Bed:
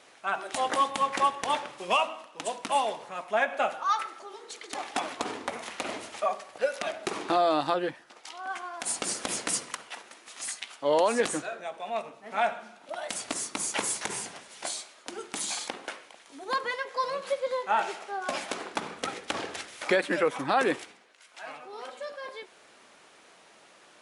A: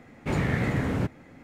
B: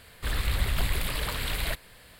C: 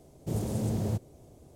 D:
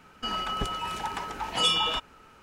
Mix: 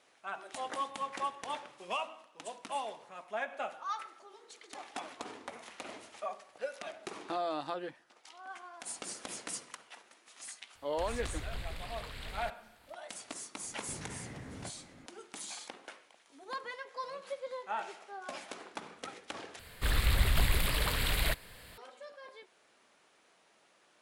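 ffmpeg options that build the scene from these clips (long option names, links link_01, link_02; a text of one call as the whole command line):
ffmpeg -i bed.wav -i cue0.wav -i cue1.wav -filter_complex "[2:a]asplit=2[link_01][link_02];[0:a]volume=-11dB[link_03];[link_01]acrossover=split=8500[link_04][link_05];[link_05]acompressor=threshold=-55dB:ratio=4:attack=1:release=60[link_06];[link_04][link_06]amix=inputs=2:normalize=0[link_07];[1:a]acompressor=threshold=-37dB:ratio=6:attack=3.2:release=140:knee=1:detection=peak[link_08];[link_03]asplit=2[link_09][link_10];[link_09]atrim=end=19.594[link_11];[link_02]atrim=end=2.19,asetpts=PTS-STARTPTS,volume=-0.5dB[link_12];[link_10]atrim=start=21.776[link_13];[link_07]atrim=end=2.19,asetpts=PTS-STARTPTS,volume=-13.5dB,afade=type=in:duration=0.004:curve=hsin,afade=type=out:start_time=2.186:duration=0.004:curve=hsin,adelay=10750[link_14];[link_08]atrim=end=1.43,asetpts=PTS-STARTPTS,volume=-6.5dB,afade=type=in:duration=0.004:curve=hsin,afade=type=out:start_time=1.426:duration=0.004:curve=hsin,adelay=13630[link_15];[link_11][link_12]acrossfade=duration=0.004:curve1=hsin:curve2=hsin[link_16];[link_16][link_13]acrossfade=duration=0.004:curve1=hsin:curve2=hsin[link_17];[link_17][link_14][link_15]amix=inputs=3:normalize=0" out.wav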